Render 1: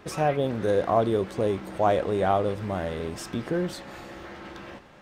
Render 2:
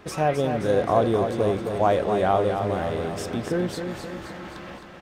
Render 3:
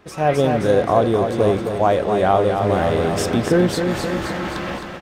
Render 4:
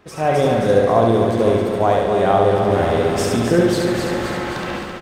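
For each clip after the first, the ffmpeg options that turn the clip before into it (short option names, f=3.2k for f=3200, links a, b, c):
-af "aecho=1:1:263|526|789|1052|1315|1578|1841:0.447|0.255|0.145|0.0827|0.0472|0.0269|0.0153,volume=1.5dB"
-af "dynaudnorm=f=160:g=3:m=16dB,volume=-3.5dB"
-af "aecho=1:1:70|140|210|280|350|420|490:0.708|0.375|0.199|0.105|0.0559|0.0296|0.0157,volume=-1dB"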